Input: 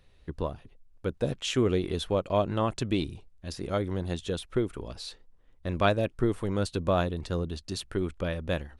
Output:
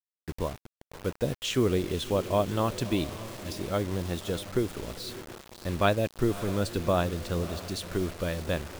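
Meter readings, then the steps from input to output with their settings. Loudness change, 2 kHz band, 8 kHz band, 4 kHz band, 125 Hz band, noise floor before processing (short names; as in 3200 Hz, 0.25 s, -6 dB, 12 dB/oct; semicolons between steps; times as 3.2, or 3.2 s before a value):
0.0 dB, +1.0 dB, +3.5 dB, +1.0 dB, 0.0 dB, -59 dBFS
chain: diffused feedback echo 0.588 s, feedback 51%, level -14 dB; bit-crush 7-bit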